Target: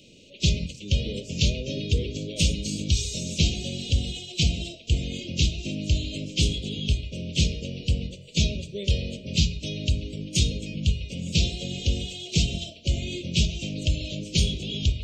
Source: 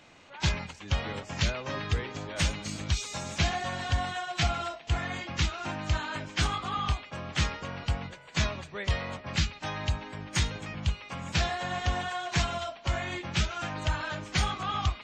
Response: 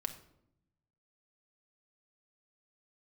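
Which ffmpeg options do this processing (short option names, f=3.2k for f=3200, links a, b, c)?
-filter_complex "[0:a]asuperstop=centerf=1200:order=12:qfactor=0.58,asplit=2[a][b];[1:a]atrim=start_sample=2205,afade=t=out:st=0.24:d=0.01,atrim=end_sample=11025[c];[b][c]afir=irnorm=-1:irlink=0,volume=1.5dB[d];[a][d]amix=inputs=2:normalize=0"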